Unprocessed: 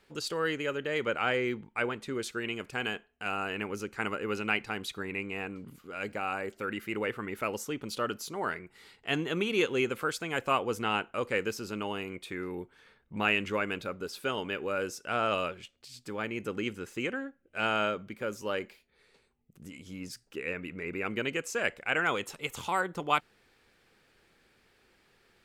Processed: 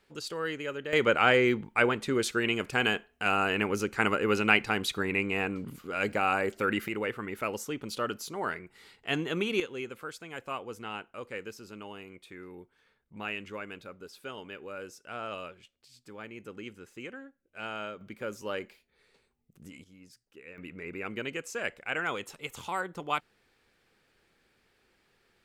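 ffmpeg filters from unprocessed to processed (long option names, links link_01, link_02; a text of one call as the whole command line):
ffmpeg -i in.wav -af "asetnsamples=nb_out_samples=441:pad=0,asendcmd='0.93 volume volume 6.5dB;6.88 volume volume 0dB;9.6 volume volume -9dB;18.01 volume volume -2dB;19.84 volume volume -13.5dB;20.58 volume volume -3.5dB',volume=-3dB" out.wav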